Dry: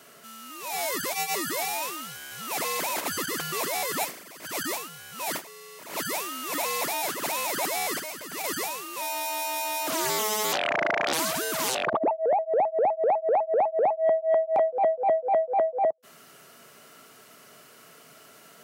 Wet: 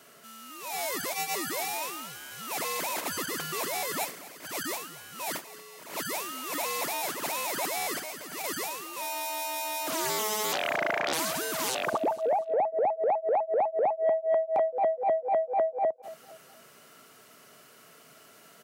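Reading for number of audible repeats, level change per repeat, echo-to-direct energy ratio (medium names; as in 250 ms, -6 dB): 3, -8.0 dB, -16.5 dB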